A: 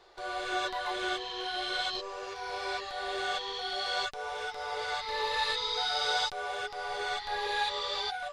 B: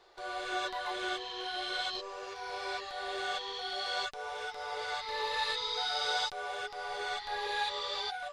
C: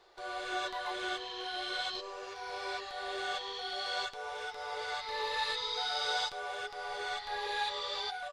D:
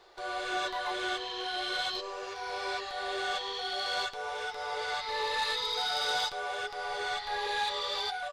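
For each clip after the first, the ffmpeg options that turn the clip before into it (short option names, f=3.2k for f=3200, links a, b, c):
-af "lowshelf=f=160:g=-4,volume=-2.5dB"
-af "aecho=1:1:107:0.126,volume=-1dB"
-af "asoftclip=type=tanh:threshold=-28dB,volume=4.5dB"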